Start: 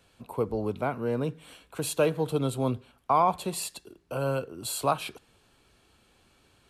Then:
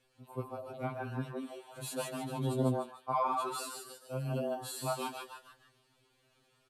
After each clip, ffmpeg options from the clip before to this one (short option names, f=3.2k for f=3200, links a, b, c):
-filter_complex "[0:a]asplit=2[a][b];[b]asplit=5[c][d][e][f][g];[c]adelay=150,afreqshift=110,volume=-3.5dB[h];[d]adelay=300,afreqshift=220,volume=-11dB[i];[e]adelay=450,afreqshift=330,volume=-18.6dB[j];[f]adelay=600,afreqshift=440,volume=-26.1dB[k];[g]adelay=750,afreqshift=550,volume=-33.6dB[l];[h][i][j][k][l]amix=inputs=5:normalize=0[m];[a][m]amix=inputs=2:normalize=0,afftfilt=real='re*2.45*eq(mod(b,6),0)':imag='im*2.45*eq(mod(b,6),0)':win_size=2048:overlap=0.75,volume=-7dB"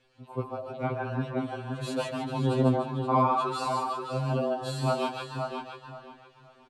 -filter_complex "[0:a]lowpass=5.1k,asplit=2[a][b];[b]adelay=525,lowpass=f=3.2k:p=1,volume=-4.5dB,asplit=2[c][d];[d]adelay=525,lowpass=f=3.2k:p=1,volume=0.27,asplit=2[e][f];[f]adelay=525,lowpass=f=3.2k:p=1,volume=0.27,asplit=2[g][h];[h]adelay=525,lowpass=f=3.2k:p=1,volume=0.27[i];[c][e][g][i]amix=inputs=4:normalize=0[j];[a][j]amix=inputs=2:normalize=0,volume=6.5dB"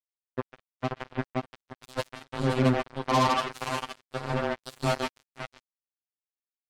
-af "acrusher=bits=3:mix=0:aa=0.5"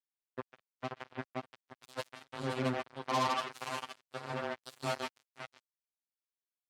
-af "highpass=75,lowshelf=f=400:g=-6.5,volume=-6.5dB"